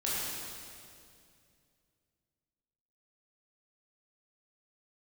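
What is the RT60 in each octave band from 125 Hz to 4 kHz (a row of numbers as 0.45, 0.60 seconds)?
3.2, 2.9, 2.6, 2.2, 2.2, 2.1 seconds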